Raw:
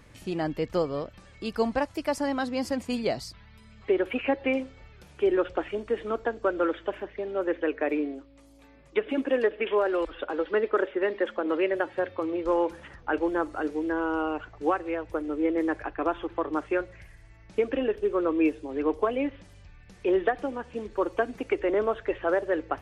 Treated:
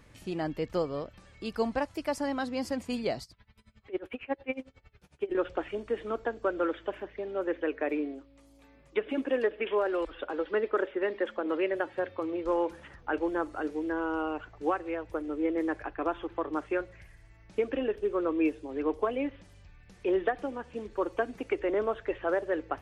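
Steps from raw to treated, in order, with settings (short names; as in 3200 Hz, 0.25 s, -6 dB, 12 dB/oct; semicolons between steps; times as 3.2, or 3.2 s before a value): 3.23–5.35 dB-linear tremolo 11 Hz, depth 24 dB; gain -3.5 dB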